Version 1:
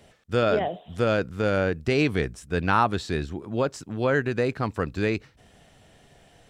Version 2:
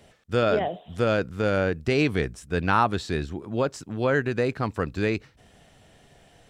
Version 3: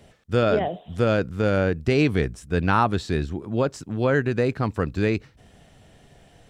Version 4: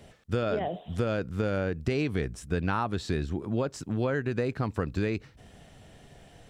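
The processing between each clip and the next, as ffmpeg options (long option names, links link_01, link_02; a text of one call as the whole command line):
ffmpeg -i in.wav -af anull out.wav
ffmpeg -i in.wav -af "lowshelf=frequency=360:gain=5" out.wav
ffmpeg -i in.wav -af "acompressor=threshold=-25dB:ratio=5" out.wav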